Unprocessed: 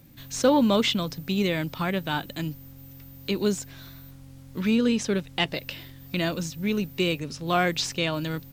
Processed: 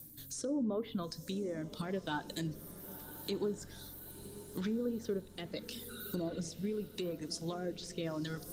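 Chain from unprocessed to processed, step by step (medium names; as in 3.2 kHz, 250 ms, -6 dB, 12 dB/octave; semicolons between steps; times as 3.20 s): low-pass that closes with the level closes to 930 Hz, closed at -19 dBFS; pre-emphasis filter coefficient 0.8; spectral replace 5.91–6.36 s, 1.2–4.4 kHz after; reverb removal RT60 1.3 s; fifteen-band graphic EQ 400 Hz +5 dB, 2.5 kHz -11 dB, 10 kHz +7 dB; reverse; upward compressor, threshold -48 dBFS; reverse; peak limiter -32 dBFS, peak gain reduction 10 dB; compression 5:1, threshold -40 dBFS, peak gain reduction 5.5 dB; rotary cabinet horn 0.8 Hz; echo that smears into a reverb 970 ms, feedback 54%, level -14 dB; FDN reverb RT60 0.61 s, low-frequency decay 1.45×, high-frequency decay 0.75×, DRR 14.5 dB; trim +9 dB; Opus 32 kbps 48 kHz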